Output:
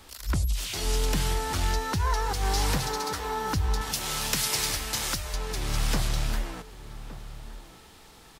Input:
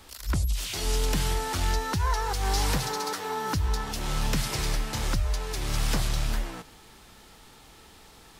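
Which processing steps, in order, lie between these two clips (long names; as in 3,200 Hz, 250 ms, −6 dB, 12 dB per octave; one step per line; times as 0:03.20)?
0:03.81–0:05.34: spectral tilt +2.5 dB per octave
slap from a distant wall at 200 metres, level −14 dB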